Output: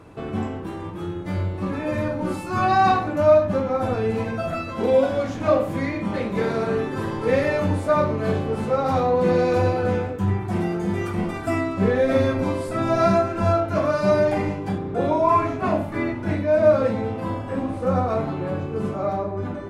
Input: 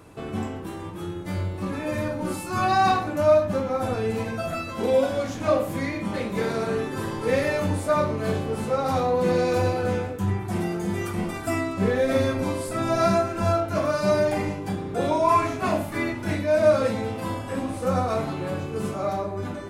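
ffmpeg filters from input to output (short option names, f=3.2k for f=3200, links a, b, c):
-af "asetnsamples=n=441:p=0,asendcmd='14.78 lowpass f 1400',lowpass=f=2.7k:p=1,volume=3dB"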